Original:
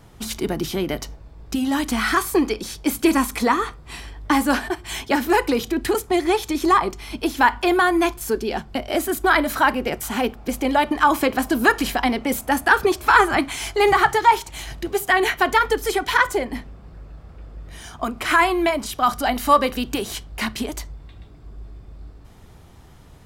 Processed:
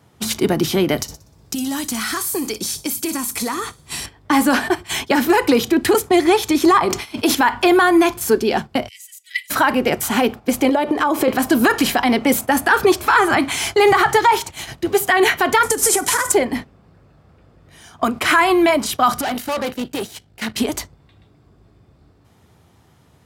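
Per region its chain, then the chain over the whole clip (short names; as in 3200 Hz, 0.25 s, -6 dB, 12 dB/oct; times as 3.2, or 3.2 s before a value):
0.98–4.06 tone controls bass +4 dB, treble +12 dB + compressor 8:1, threshold -27 dBFS + thin delay 61 ms, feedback 54%, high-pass 4200 Hz, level -8 dB
6.85–7.35 low shelf 210 Hz -7.5 dB + sustainer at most 73 dB/s
8.88–9.5 rippled Chebyshev high-pass 1900 Hz, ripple 9 dB + bell 2500 Hz -7 dB 0.29 oct
10.69–11.28 bell 440 Hz +13 dB 1.2 oct + compressor, threshold -21 dBFS
15.63–16.32 CVSD 64 kbps + compressor, threshold -22 dBFS + resonant high shelf 5300 Hz +13.5 dB, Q 1.5
19.21–20.54 bell 1100 Hz -12.5 dB 0.21 oct + tube stage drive 26 dB, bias 0.75
whole clip: gate -32 dBFS, range -11 dB; HPF 81 Hz 24 dB/oct; limiter -12 dBFS; gain +7 dB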